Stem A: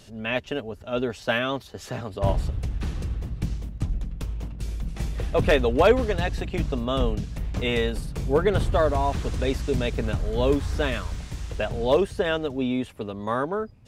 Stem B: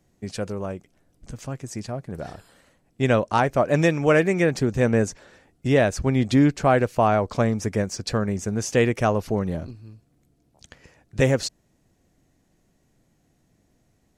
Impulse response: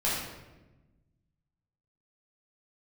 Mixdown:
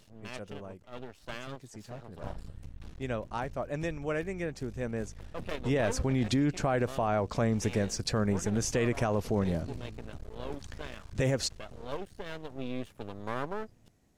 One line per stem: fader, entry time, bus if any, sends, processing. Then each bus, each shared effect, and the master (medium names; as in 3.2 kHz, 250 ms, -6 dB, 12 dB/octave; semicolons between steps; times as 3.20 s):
-6.0 dB, 0.00 s, no send, half-wave rectifier; auto duck -8 dB, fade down 0.30 s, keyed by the second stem
5.21 s -15 dB -> 5.98 s -3 dB, 0.00 s, no send, none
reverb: none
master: peak limiter -19.5 dBFS, peak gain reduction 9.5 dB